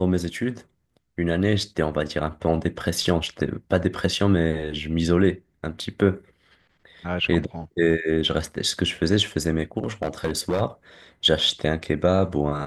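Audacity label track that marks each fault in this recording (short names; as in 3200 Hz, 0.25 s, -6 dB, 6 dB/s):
9.790000	10.620000	clipped -18.5 dBFS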